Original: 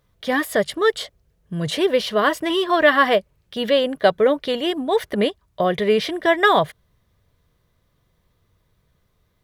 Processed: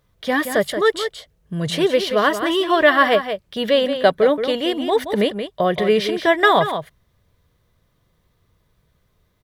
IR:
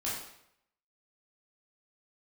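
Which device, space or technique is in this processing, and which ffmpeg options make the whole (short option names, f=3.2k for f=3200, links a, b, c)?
ducked delay: -filter_complex "[0:a]asplit=3[a][b][c];[b]adelay=176,volume=-8.5dB[d];[c]apad=whole_len=423769[e];[d][e]sidechaincompress=threshold=-17dB:ratio=8:attack=46:release=258[f];[a][f]amix=inputs=2:normalize=0,volume=1dB"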